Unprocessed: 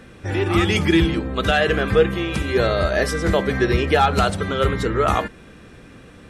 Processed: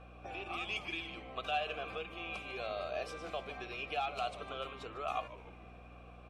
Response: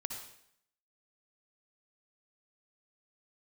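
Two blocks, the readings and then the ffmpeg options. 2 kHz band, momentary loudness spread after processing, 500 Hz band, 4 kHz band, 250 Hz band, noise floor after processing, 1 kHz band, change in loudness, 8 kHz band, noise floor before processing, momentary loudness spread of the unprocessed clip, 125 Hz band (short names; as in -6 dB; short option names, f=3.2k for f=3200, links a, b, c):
-18.5 dB, 14 LU, -22.0 dB, -16.5 dB, -30.0 dB, -54 dBFS, -16.5 dB, -20.5 dB, -24.5 dB, -44 dBFS, 5 LU, -30.5 dB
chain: -filter_complex "[0:a]highshelf=f=8.9k:g=6.5,acrossover=split=2300[a][b];[a]acompressor=threshold=-29dB:ratio=6[c];[c][b]amix=inputs=2:normalize=0,asplit=3[d][e][f];[d]bandpass=f=730:t=q:w=8,volume=0dB[g];[e]bandpass=f=1.09k:t=q:w=8,volume=-6dB[h];[f]bandpass=f=2.44k:t=q:w=8,volume=-9dB[i];[g][h][i]amix=inputs=3:normalize=0,aeval=exprs='val(0)+0.00158*(sin(2*PI*60*n/s)+sin(2*PI*2*60*n/s)/2+sin(2*PI*3*60*n/s)/3+sin(2*PI*4*60*n/s)/4+sin(2*PI*5*60*n/s)/5)':c=same,asplit=6[j][k][l][m][n][o];[k]adelay=149,afreqshift=-140,volume=-15dB[p];[l]adelay=298,afreqshift=-280,volume=-21.2dB[q];[m]adelay=447,afreqshift=-420,volume=-27.4dB[r];[n]adelay=596,afreqshift=-560,volume=-33.6dB[s];[o]adelay=745,afreqshift=-700,volume=-39.8dB[t];[j][p][q][r][s][t]amix=inputs=6:normalize=0,volume=2dB"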